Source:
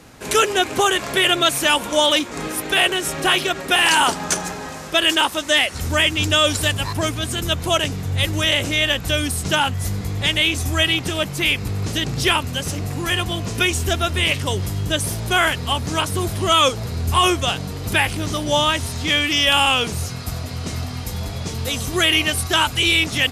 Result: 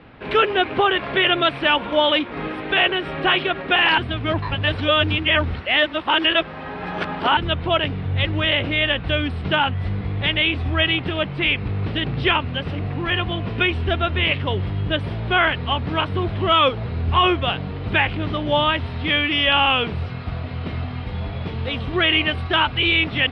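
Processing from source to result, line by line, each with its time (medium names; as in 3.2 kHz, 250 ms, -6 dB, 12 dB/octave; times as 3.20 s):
3.98–7.37 s: reverse
whole clip: inverse Chebyshev low-pass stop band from 6.2 kHz, stop band 40 dB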